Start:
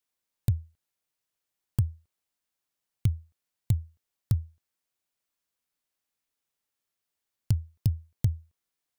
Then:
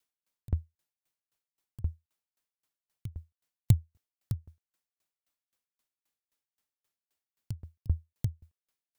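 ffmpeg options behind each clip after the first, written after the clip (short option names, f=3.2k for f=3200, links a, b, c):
-af "aeval=exprs='val(0)*pow(10,-34*if(lt(mod(3.8*n/s,1),2*abs(3.8)/1000),1-mod(3.8*n/s,1)/(2*abs(3.8)/1000),(mod(3.8*n/s,1)-2*abs(3.8)/1000)/(1-2*abs(3.8)/1000))/20)':c=same,volume=6.5dB"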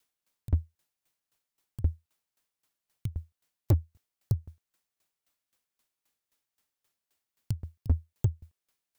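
-af "asoftclip=type=hard:threshold=-23.5dB,volume=6dB"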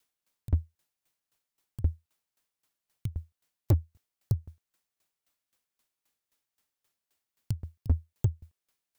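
-af anull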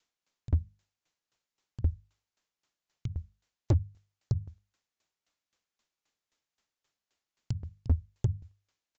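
-af "bandreject=f=50:t=h:w=6,bandreject=f=100:t=h:w=6,bandreject=f=150:t=h:w=6,bandreject=f=200:t=h:w=6,aresample=16000,aresample=44100"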